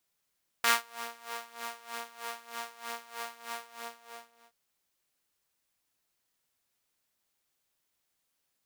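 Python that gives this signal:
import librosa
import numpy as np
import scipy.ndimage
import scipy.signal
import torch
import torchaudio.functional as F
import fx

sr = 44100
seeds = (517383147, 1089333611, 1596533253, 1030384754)

y = fx.sub_patch_tremolo(sr, seeds[0], note=58, wave='saw', wave2='saw', interval_st=0, detune_cents=16, level2_db=-9.0, sub_db=-15.0, noise_db=-15, kind='highpass', cutoff_hz=690.0, q=1.3, env_oct=1.0, env_decay_s=0.27, env_sustain_pct=40, attack_ms=1.8, decay_s=0.18, sustain_db=-19, release_s=1.0, note_s=2.88, lfo_hz=3.2, tremolo_db=18.0)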